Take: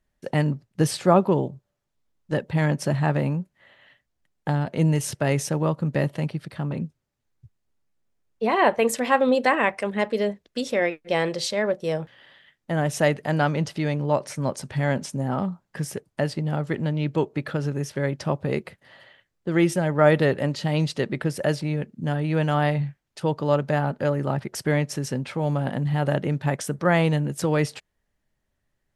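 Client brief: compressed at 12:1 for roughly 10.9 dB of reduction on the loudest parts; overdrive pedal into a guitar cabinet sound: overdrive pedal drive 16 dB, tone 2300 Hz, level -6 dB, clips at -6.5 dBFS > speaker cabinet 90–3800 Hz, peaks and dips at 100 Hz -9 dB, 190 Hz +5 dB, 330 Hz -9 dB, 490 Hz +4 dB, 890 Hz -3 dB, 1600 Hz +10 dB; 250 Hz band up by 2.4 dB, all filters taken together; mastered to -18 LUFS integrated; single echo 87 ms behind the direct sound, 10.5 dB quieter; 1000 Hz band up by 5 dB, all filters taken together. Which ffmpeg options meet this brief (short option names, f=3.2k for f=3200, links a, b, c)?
-filter_complex "[0:a]equalizer=f=250:t=o:g=5,equalizer=f=1k:t=o:g=7,acompressor=threshold=-19dB:ratio=12,aecho=1:1:87:0.299,asplit=2[a][b];[b]highpass=f=720:p=1,volume=16dB,asoftclip=type=tanh:threshold=-6.5dB[c];[a][c]amix=inputs=2:normalize=0,lowpass=f=2.3k:p=1,volume=-6dB,highpass=90,equalizer=f=100:t=q:w=4:g=-9,equalizer=f=190:t=q:w=4:g=5,equalizer=f=330:t=q:w=4:g=-9,equalizer=f=490:t=q:w=4:g=4,equalizer=f=890:t=q:w=4:g=-3,equalizer=f=1.6k:t=q:w=4:g=10,lowpass=f=3.8k:w=0.5412,lowpass=f=3.8k:w=1.3066,volume=3.5dB"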